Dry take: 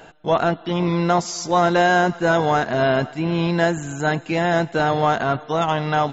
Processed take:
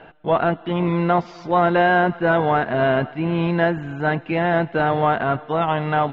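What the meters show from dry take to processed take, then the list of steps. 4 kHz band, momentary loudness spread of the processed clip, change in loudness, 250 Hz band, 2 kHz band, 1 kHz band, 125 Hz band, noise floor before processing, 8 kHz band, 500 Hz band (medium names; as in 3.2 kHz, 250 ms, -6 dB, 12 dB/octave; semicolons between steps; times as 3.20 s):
-5.5 dB, 5 LU, 0.0 dB, 0.0 dB, 0.0 dB, 0.0 dB, 0.0 dB, -43 dBFS, no reading, 0.0 dB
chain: low-pass 3 kHz 24 dB/octave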